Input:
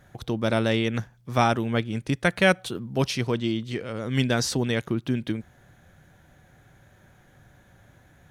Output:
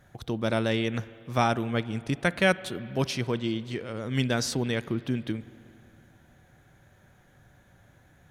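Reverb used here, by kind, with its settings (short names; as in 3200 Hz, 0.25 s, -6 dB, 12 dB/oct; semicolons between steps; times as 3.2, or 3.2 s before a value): spring tank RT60 2.8 s, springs 46/56 ms, chirp 25 ms, DRR 17 dB; gain -3 dB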